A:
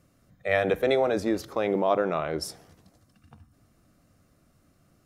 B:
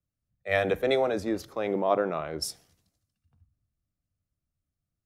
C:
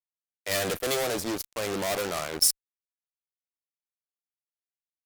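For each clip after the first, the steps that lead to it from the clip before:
three bands expanded up and down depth 70%; trim -3 dB
fuzz box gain 32 dB, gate -40 dBFS; pre-emphasis filter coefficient 0.8

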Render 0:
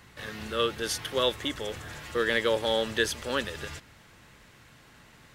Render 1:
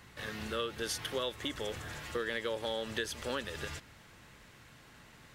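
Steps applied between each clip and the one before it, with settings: compression 6:1, threshold -30 dBFS, peak gain reduction 9.5 dB; trim -2 dB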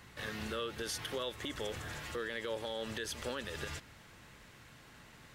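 peak limiter -28.5 dBFS, peak gain reduction 8 dB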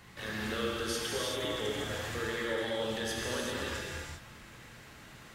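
gated-style reverb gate 420 ms flat, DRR -4 dB

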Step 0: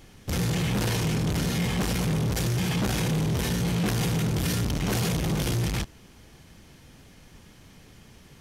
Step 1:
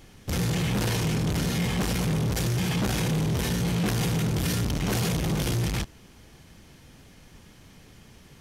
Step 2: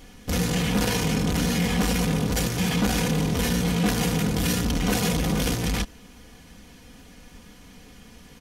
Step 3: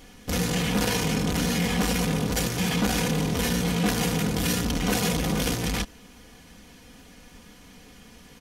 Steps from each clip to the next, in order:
no audible change
comb 4.1 ms, depth 60%; trim +2.5 dB
bass shelf 170 Hz -4 dB

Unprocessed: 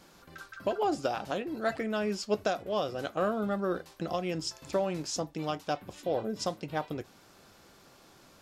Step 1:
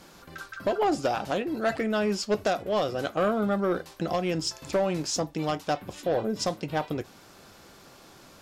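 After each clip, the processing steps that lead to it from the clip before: sine folder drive 4 dB, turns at -16.5 dBFS; trim -2 dB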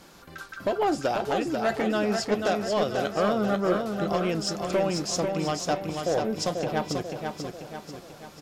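feedback delay 490 ms, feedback 49%, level -5 dB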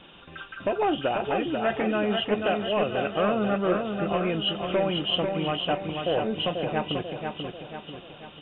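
knee-point frequency compression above 2.4 kHz 4:1

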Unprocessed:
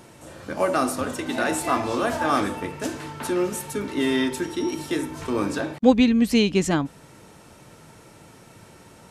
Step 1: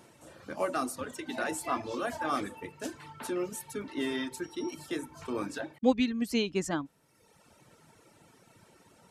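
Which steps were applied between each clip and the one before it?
bass shelf 86 Hz -8 dB; reverb removal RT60 1.1 s; trim -8 dB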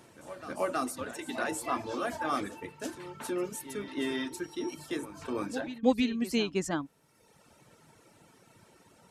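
reverse echo 320 ms -13.5 dB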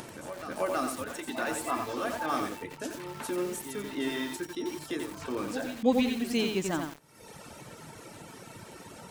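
upward compressor, threshold -34 dBFS; bit-crushed delay 89 ms, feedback 35%, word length 7-bit, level -4 dB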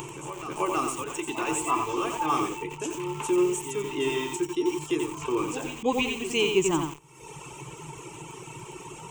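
rippled EQ curve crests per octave 0.7, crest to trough 16 dB; trim +2 dB

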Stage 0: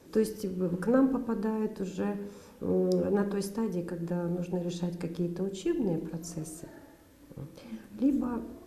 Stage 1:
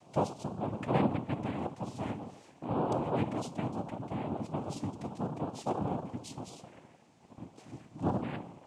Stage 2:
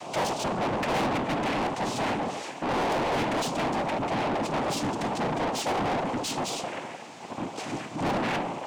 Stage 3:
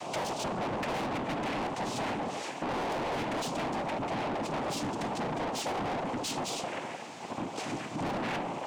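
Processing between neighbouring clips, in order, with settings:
noise-vocoded speech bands 4; trim -4 dB
overdrive pedal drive 36 dB, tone 5.3 kHz, clips at -15 dBFS; trim -5 dB
compression, threshold -32 dBFS, peak gain reduction 7.5 dB

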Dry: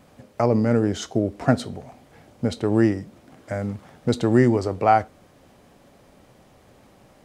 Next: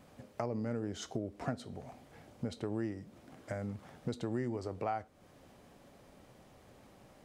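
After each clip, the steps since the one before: compression 3:1, threshold -31 dBFS, peak gain reduction 14.5 dB; trim -6 dB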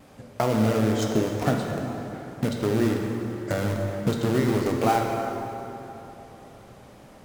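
in parallel at -3.5 dB: bit crusher 6-bit; on the sum: wow and flutter 70 cents; plate-style reverb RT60 3.5 s, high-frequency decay 0.6×, DRR 0.5 dB; trim +7.5 dB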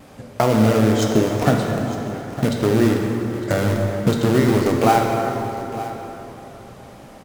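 delay 908 ms -15 dB; trim +6.5 dB

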